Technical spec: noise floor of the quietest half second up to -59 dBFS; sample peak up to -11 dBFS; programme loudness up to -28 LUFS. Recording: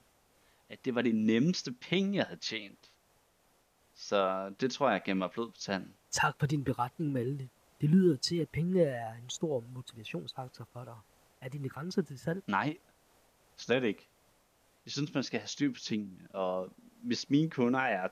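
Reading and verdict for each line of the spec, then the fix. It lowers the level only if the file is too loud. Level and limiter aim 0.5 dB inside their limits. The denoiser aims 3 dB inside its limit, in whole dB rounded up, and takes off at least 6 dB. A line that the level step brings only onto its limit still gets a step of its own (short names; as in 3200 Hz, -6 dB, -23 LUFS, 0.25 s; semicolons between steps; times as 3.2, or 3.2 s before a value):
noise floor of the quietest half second -70 dBFS: OK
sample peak -14.5 dBFS: OK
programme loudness -33.0 LUFS: OK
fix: none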